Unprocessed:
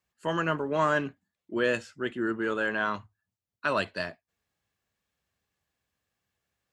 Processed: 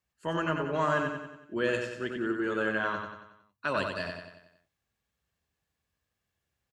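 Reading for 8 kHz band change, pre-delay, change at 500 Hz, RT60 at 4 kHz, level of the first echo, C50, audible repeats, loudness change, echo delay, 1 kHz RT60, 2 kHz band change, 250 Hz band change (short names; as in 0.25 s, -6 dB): -2.0 dB, none, -1.5 dB, none, -5.0 dB, none, 6, -1.5 dB, 92 ms, none, -2.0 dB, -1.0 dB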